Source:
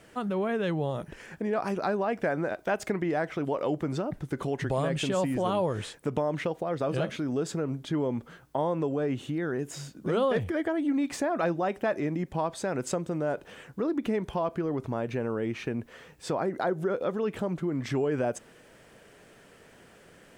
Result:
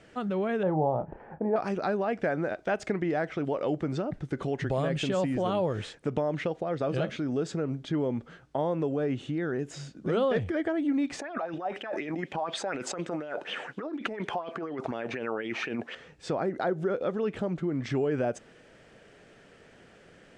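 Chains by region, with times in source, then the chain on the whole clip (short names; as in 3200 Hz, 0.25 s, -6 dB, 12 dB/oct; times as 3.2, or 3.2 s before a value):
0.63–1.56 synth low-pass 850 Hz, resonance Q 4.1 + doubler 32 ms -11 dB
11.19–15.95 HPF 240 Hz + negative-ratio compressor -36 dBFS + LFO bell 4.1 Hz 710–3300 Hz +16 dB
whole clip: Bessel low-pass 5800 Hz, order 4; bell 1000 Hz -5 dB 0.33 oct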